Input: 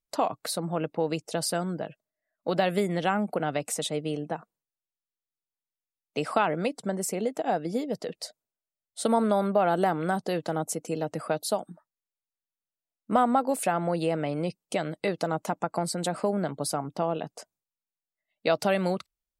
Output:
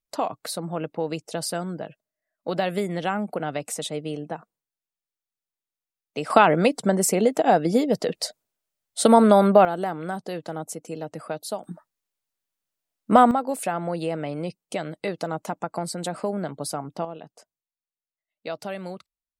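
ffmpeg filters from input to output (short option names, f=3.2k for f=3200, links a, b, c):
-af "asetnsamples=n=441:p=0,asendcmd='6.3 volume volume 9dB;9.65 volume volume -3dB;11.64 volume volume 8dB;13.31 volume volume -0.5dB;17.05 volume volume -8dB',volume=0dB"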